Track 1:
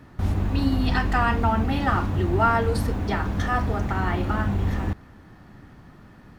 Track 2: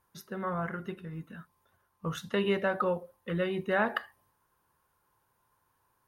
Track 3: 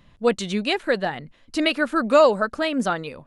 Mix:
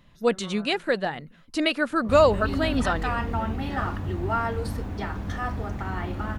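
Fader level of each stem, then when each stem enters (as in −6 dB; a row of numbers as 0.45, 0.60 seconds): −6.0, −11.5, −2.5 decibels; 1.90, 0.00, 0.00 seconds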